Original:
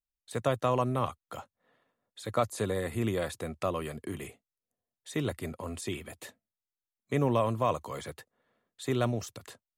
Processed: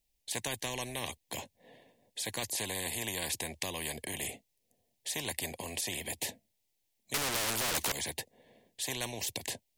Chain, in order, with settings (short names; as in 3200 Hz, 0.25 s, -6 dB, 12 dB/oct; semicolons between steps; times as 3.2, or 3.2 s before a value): Butterworth band-stop 1300 Hz, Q 1.2; 7.14–7.92 overdrive pedal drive 37 dB, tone 3200 Hz, clips at -16 dBFS; spectral compressor 4:1